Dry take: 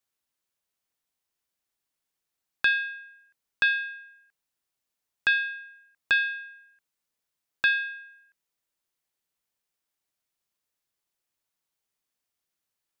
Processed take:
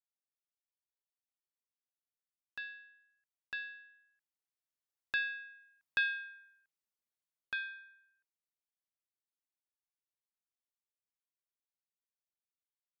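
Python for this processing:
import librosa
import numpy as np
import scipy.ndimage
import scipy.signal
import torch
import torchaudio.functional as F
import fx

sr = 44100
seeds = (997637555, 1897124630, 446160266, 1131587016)

y = fx.doppler_pass(x, sr, speed_mps=9, closest_m=7.7, pass_at_s=5.9)
y = y * 10.0 ** (-8.5 / 20.0)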